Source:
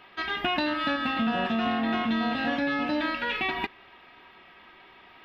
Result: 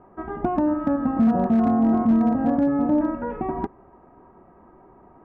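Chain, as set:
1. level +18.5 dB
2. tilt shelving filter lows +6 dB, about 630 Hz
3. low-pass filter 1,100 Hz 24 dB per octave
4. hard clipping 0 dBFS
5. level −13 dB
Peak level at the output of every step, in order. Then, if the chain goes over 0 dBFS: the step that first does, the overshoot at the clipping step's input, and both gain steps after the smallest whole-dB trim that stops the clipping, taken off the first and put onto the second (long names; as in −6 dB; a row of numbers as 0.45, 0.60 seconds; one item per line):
+4.5, +5.5, +3.5, 0.0, −13.0 dBFS
step 1, 3.5 dB
step 1 +14.5 dB, step 5 −9 dB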